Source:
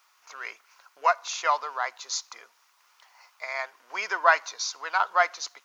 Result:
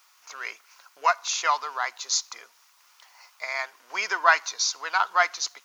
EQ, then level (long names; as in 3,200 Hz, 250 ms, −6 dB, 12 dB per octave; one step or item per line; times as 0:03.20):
high-shelf EQ 2,800 Hz +7.5 dB
dynamic equaliser 550 Hz, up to −8 dB, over −43 dBFS, Q 2.9
low-shelf EQ 290 Hz +4.5 dB
0.0 dB